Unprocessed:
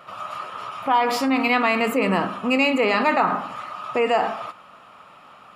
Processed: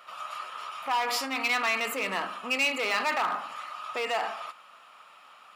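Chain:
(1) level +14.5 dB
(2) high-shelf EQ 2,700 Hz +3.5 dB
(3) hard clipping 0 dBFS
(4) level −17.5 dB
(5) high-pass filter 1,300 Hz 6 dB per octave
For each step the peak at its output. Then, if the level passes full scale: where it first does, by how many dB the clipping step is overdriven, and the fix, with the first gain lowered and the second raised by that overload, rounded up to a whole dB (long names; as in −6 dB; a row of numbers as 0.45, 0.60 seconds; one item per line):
+7.5, +8.5, 0.0, −17.5, −14.0 dBFS
step 1, 8.5 dB
step 1 +5.5 dB, step 4 −8.5 dB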